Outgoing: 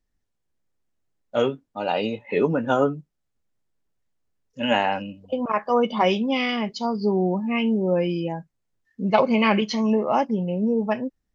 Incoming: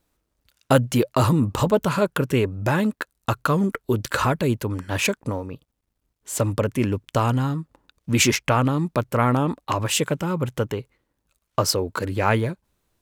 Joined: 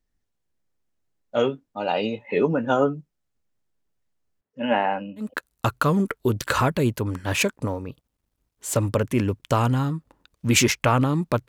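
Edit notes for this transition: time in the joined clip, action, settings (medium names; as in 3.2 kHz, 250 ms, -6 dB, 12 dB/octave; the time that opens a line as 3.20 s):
outgoing
4.41–5.34 s: band-pass 150–2000 Hz
5.25 s: go over to incoming from 2.89 s, crossfade 0.18 s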